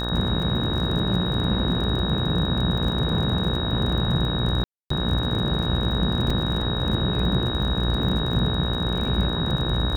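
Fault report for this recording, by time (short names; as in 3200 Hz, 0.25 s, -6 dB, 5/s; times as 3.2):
buzz 60 Hz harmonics 30 -28 dBFS
crackle 38/s -29 dBFS
tone 3800 Hz -29 dBFS
4.64–4.9 gap 0.264 s
6.3 gap 4 ms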